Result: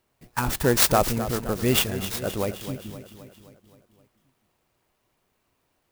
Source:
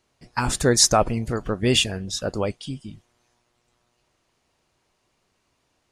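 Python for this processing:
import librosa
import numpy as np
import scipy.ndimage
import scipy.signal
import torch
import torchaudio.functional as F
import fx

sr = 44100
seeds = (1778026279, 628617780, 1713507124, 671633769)

p1 = x + fx.echo_feedback(x, sr, ms=261, feedback_pct=57, wet_db=-12, dry=0)
p2 = fx.clock_jitter(p1, sr, seeds[0], jitter_ms=0.048)
y = p2 * librosa.db_to_amplitude(-2.0)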